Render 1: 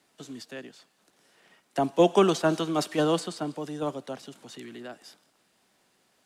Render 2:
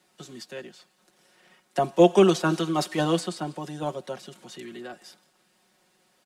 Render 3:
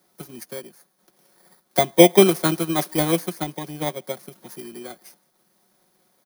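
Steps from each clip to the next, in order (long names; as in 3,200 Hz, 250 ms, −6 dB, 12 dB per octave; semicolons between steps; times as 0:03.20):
comb filter 5.5 ms, depth 73%
samples in bit-reversed order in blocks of 16 samples; transient designer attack +5 dB, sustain −3 dB; level +1.5 dB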